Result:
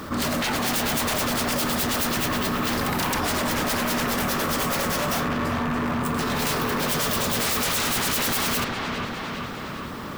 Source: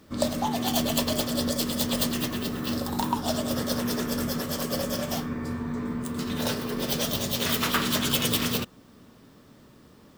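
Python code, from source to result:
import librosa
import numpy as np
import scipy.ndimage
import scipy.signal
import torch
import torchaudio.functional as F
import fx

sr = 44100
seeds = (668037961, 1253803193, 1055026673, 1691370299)

p1 = fx.sample_hold(x, sr, seeds[0], rate_hz=16000.0, jitter_pct=0)
p2 = x + (p1 * librosa.db_to_amplitude(-9.5))
p3 = fx.peak_eq(p2, sr, hz=1200.0, db=9.5, octaves=1.1)
p4 = 10.0 ** (-24.0 / 20.0) * (np.abs((p3 / 10.0 ** (-24.0 / 20.0) + 3.0) % 4.0 - 2.0) - 1.0)
p5 = fx.high_shelf(p4, sr, hz=8700.0, db=5.5)
p6 = p5 + fx.echo_wet_lowpass(p5, sr, ms=407, feedback_pct=49, hz=3000.0, wet_db=-6.5, dry=0)
p7 = fx.env_flatten(p6, sr, amount_pct=50)
y = p7 * librosa.db_to_amplitude(2.0)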